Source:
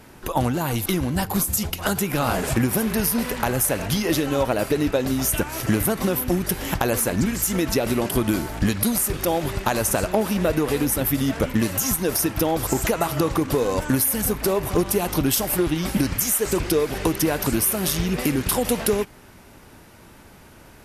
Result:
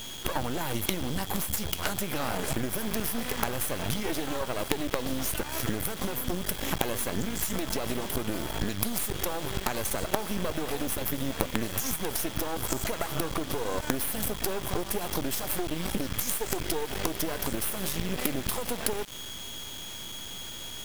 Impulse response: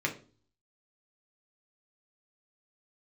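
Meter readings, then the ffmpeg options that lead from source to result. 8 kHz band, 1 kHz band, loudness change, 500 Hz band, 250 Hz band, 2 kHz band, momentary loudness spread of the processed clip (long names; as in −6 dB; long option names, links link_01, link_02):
−8.0 dB, −7.5 dB, −9.0 dB, −10.0 dB, −11.0 dB, −6.5 dB, 3 LU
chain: -af "aeval=exprs='val(0)+0.0112*sin(2*PI*3300*n/s)':channel_layout=same,acompressor=threshold=-26dB:ratio=10,acrusher=bits=4:dc=4:mix=0:aa=0.000001,volume=3dB"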